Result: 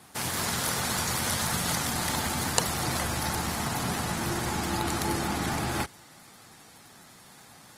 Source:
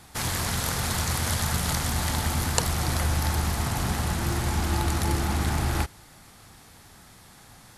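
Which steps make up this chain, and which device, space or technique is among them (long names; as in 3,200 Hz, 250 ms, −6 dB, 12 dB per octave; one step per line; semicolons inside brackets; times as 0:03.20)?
noise-suppressed video call (high-pass filter 150 Hz 12 dB per octave; gate on every frequency bin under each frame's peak −30 dB strong; Opus 20 kbit/s 48,000 Hz)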